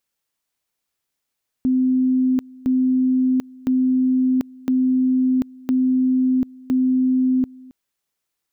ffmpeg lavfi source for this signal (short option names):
-f lavfi -i "aevalsrc='pow(10,(-14.5-24*gte(mod(t,1.01),0.74))/20)*sin(2*PI*257*t)':d=6.06:s=44100"